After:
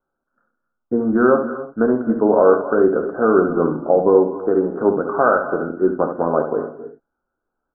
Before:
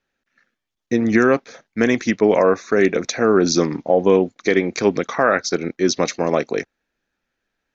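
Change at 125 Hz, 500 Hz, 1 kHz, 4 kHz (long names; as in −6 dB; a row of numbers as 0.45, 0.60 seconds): −3.0 dB, +2.0 dB, +2.5 dB, below −40 dB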